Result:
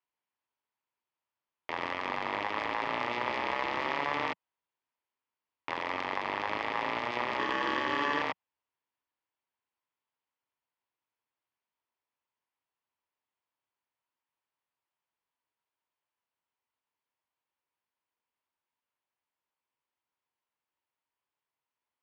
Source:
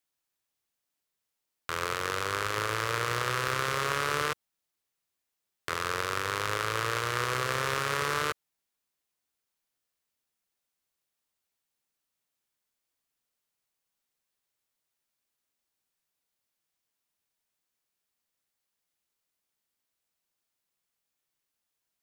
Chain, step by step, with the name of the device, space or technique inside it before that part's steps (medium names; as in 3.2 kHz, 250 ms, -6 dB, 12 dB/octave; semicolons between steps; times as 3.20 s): 7.39–8.22 s: rippled EQ curve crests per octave 0.76, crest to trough 13 dB; ring modulator pedal into a guitar cabinet (polarity switched at an audio rate 720 Hz; cabinet simulation 81–3800 Hz, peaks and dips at 180 Hz -9 dB, 960 Hz +10 dB, 3.8 kHz -6 dB); trim -3.5 dB